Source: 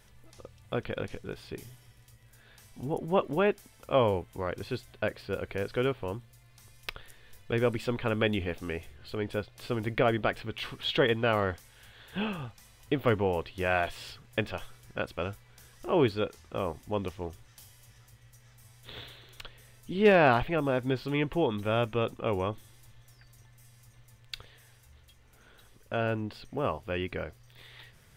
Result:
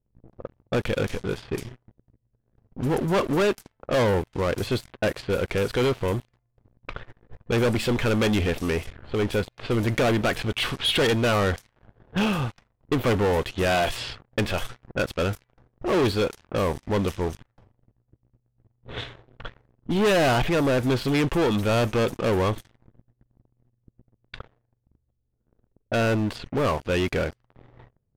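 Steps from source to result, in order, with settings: waveshaping leveller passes 5; level-controlled noise filter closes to 350 Hz, open at -18 dBFS; trim -5.5 dB

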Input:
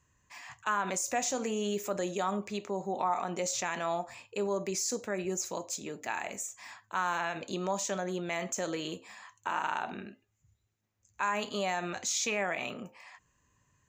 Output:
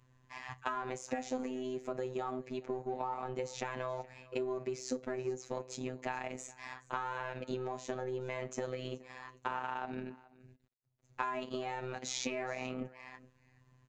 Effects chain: companding laws mixed up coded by A; Bessel low-pass 3.5 kHz, order 2; tilt shelf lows +4.5 dB, about 740 Hz; compression 5:1, threshold -47 dBFS, peak gain reduction 18 dB; robot voice 128 Hz; on a send: delay 422 ms -21.5 dB; on the sum: trim +13.5 dB

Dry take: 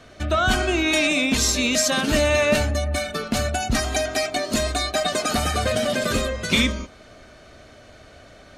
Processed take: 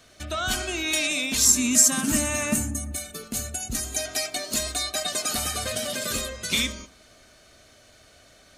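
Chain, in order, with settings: pre-emphasis filter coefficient 0.8; reverberation RT60 0.65 s, pre-delay 57 ms, DRR 19 dB; 2.54–3.98 s: time-frequency box 520–6000 Hz -7 dB; 1.45–2.92 s: graphic EQ 125/250/500/1000/4000/8000 Hz +5/+11/-8/+5/-10/+8 dB; trim +3.5 dB

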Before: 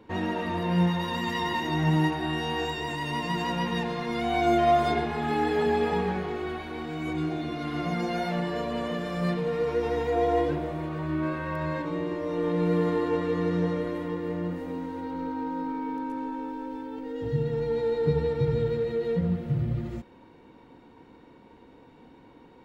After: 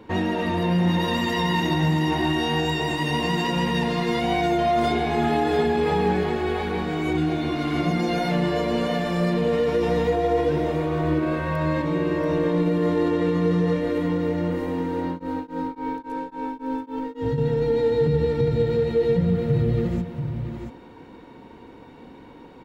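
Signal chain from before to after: dynamic bell 1.2 kHz, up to -4 dB, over -39 dBFS, Q 1.1; peak limiter -21.5 dBFS, peak gain reduction 7.5 dB; delay 684 ms -6.5 dB; 15.06–17.38 s: tremolo of two beating tones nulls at 3.6 Hz; trim +7 dB

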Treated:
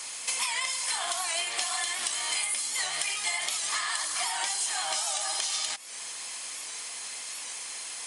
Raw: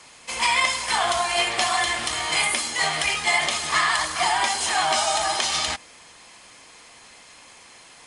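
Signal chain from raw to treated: high-pass 70 Hz; RIAA curve recording; compression 6:1, threshold -31 dBFS, peak gain reduction 18.5 dB; warped record 78 rpm, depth 100 cents; trim +2 dB

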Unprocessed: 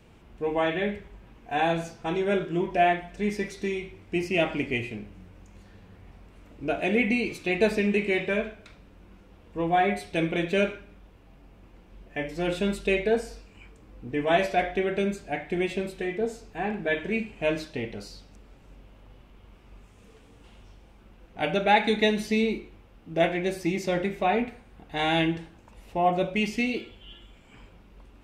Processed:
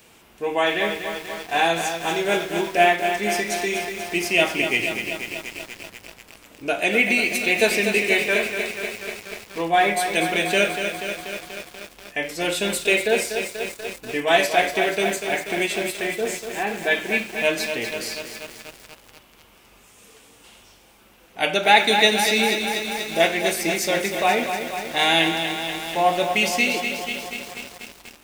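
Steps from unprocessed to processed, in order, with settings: RIAA curve recording; bit-crushed delay 242 ms, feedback 80%, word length 7-bit, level -7 dB; trim +5.5 dB

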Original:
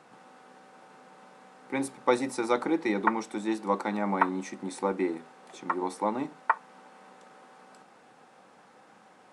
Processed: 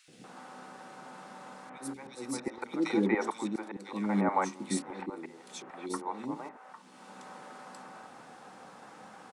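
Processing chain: slow attack 568 ms; three bands offset in time highs, lows, mids 80/240 ms, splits 460/2400 Hz; trim +7 dB

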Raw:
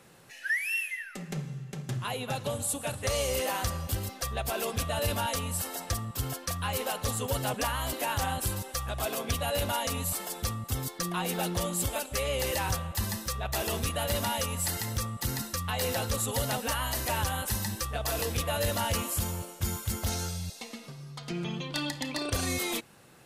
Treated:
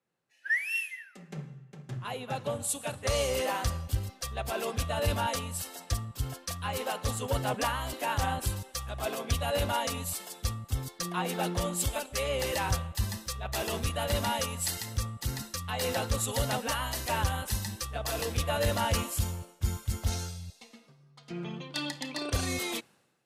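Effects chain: treble shelf 11 kHz -9.5 dB; three bands expanded up and down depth 100%

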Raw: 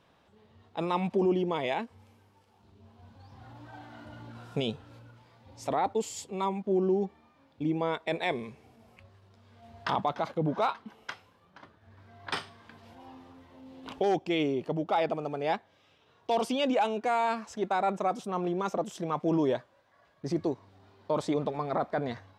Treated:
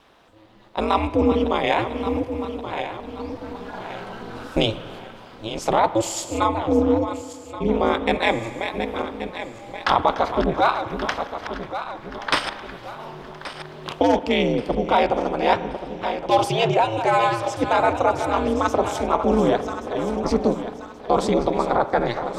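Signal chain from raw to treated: backward echo that repeats 564 ms, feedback 62%, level -10 dB; bass shelf 190 Hz -8.5 dB; ring modulator 110 Hz; in parallel at +2 dB: gain riding within 4 dB 0.5 s; on the sum: spring tank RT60 2 s, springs 37/42 ms, chirp 75 ms, DRR 13 dB; trim +6.5 dB

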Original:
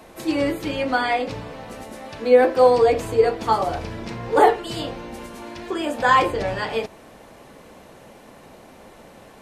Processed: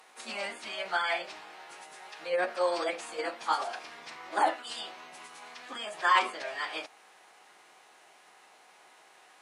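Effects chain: high-pass 990 Hz 12 dB/octave; formant-preserving pitch shift -6 st; trim -4.5 dB

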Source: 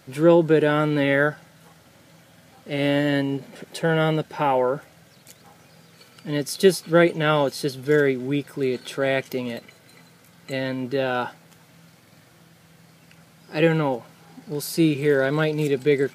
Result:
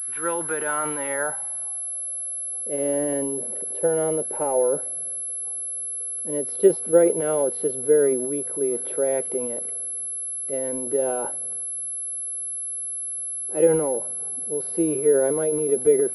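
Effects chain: band-pass sweep 1.4 kHz -> 480 Hz, 0.29–2.68 s; transient shaper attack +3 dB, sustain +8 dB; class-D stage that switches slowly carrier 11 kHz; trim +1.5 dB

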